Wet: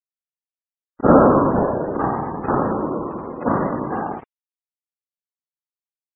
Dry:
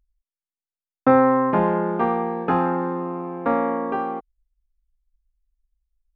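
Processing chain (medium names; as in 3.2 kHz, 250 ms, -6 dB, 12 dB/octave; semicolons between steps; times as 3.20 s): short-time spectra conjugated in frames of 122 ms; bass shelf 280 Hz +4.5 dB; whisper effect; crossover distortion -42 dBFS; spectral gate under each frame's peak -25 dB strong; trim +3 dB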